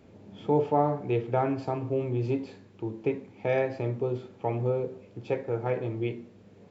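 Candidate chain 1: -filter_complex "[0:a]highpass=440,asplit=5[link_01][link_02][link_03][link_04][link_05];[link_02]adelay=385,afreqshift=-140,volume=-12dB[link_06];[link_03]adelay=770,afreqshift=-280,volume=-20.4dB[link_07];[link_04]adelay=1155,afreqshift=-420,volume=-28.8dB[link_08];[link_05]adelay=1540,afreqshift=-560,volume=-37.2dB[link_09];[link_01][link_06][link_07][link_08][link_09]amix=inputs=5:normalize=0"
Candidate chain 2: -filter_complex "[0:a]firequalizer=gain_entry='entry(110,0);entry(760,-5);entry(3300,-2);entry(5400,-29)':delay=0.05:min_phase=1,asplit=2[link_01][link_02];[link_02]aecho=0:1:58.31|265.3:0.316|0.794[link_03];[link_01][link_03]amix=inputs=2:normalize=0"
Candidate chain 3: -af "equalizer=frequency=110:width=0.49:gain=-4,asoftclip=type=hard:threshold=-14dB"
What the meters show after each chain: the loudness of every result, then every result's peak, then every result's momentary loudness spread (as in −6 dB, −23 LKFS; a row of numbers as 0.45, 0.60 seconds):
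−33.0, −30.0, −31.0 LKFS; −13.0, −13.5, −14.0 dBFS; 15, 7, 11 LU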